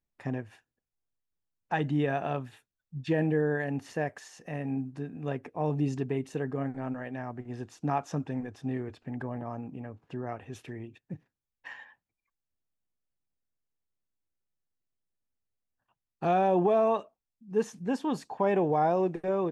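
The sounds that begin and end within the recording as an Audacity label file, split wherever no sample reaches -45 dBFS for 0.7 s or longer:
1.710000	11.840000	sound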